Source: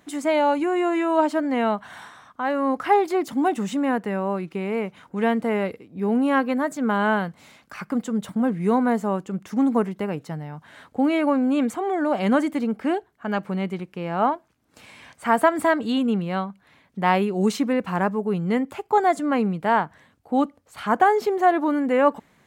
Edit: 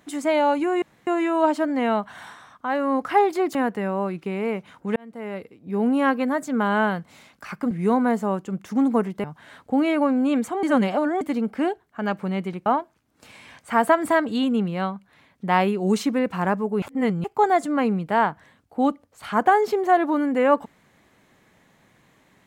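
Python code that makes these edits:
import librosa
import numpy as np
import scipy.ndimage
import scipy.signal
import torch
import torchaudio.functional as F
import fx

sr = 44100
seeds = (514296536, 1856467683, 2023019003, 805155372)

y = fx.edit(x, sr, fx.insert_room_tone(at_s=0.82, length_s=0.25),
    fx.cut(start_s=3.3, length_s=0.54),
    fx.fade_in_span(start_s=5.25, length_s=0.88),
    fx.cut(start_s=8.0, length_s=0.52),
    fx.cut(start_s=10.05, length_s=0.45),
    fx.reverse_span(start_s=11.89, length_s=0.58),
    fx.cut(start_s=13.92, length_s=0.28),
    fx.reverse_span(start_s=18.36, length_s=0.42), tone=tone)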